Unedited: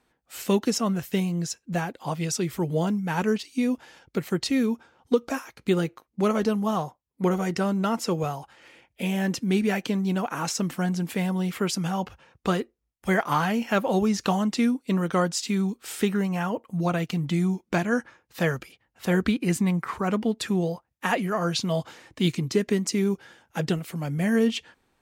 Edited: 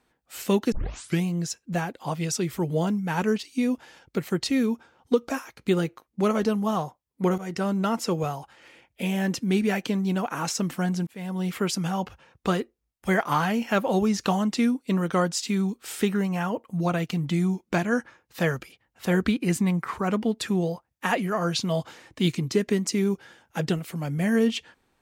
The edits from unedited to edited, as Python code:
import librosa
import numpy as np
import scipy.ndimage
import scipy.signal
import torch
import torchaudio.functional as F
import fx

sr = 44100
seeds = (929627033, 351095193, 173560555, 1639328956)

y = fx.edit(x, sr, fx.tape_start(start_s=0.72, length_s=0.51),
    fx.fade_in_from(start_s=7.38, length_s=0.43, curve='qsin', floor_db=-13.0),
    fx.fade_in_span(start_s=11.07, length_s=0.41), tone=tone)